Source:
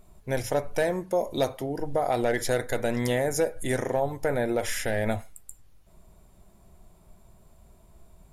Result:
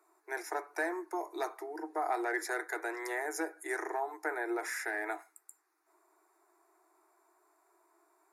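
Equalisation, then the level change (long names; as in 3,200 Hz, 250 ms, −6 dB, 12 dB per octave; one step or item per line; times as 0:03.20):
Chebyshev high-pass filter 310 Hz, order 10
high-shelf EQ 4,400 Hz −10.5 dB
phaser with its sweep stopped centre 1,300 Hz, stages 4
+1.5 dB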